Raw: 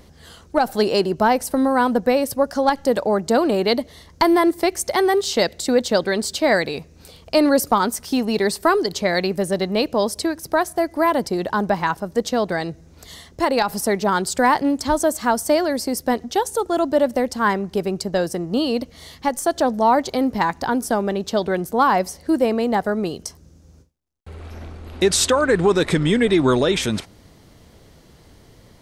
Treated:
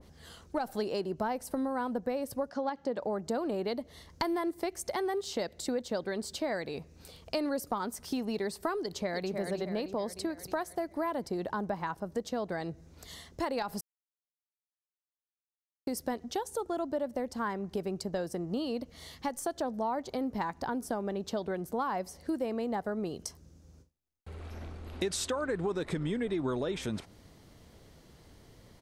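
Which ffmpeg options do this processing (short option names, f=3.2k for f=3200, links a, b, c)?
-filter_complex "[0:a]asettb=1/sr,asplit=3[a][b][c];[a]atrim=end=2.494[d];[b]atrim=start=2.49:end=3.02,asetpts=PTS-STARTPTS,afade=t=in:d=0.004:c=qsin,afade=t=out:st=0.526:d=0.004:c=qsin,highpass=130,lowpass=5k[e];[c]atrim=start=3.016[f];[d][e]acrossfade=d=0.004:c1=hsin:c2=qsin[g];[g][f]acrossfade=d=0.004:c1=qsin:c2=hsin,asplit=2[h][i];[i]afade=t=in:st=8.82:d=0.01,afade=t=out:st=9.37:d=0.01,aecho=0:1:310|620|930|1240|1550|1860|2170:0.446684|0.245676|0.135122|0.074317|0.0408743|0.0224809|0.0123645[j];[h][j]amix=inputs=2:normalize=0,asplit=3[k][l][m];[k]atrim=end=13.81,asetpts=PTS-STARTPTS,afade=t=out:st=13.806:d=0.004:c=hsin[n];[l]atrim=start=13.81:end=15.87,asetpts=PTS-STARTPTS,volume=0[o];[m]atrim=start=15.87,asetpts=PTS-STARTPTS,afade=t=in:d=0.004:c=hsin[p];[n][o][p]concat=n=3:v=0:a=1,acompressor=threshold=-24dB:ratio=3,adynamicequalizer=threshold=0.01:dfrequency=1600:dqfactor=0.7:tfrequency=1600:tqfactor=0.7:attack=5:release=100:ratio=0.375:range=3:mode=cutabove:tftype=highshelf,volume=-7.5dB"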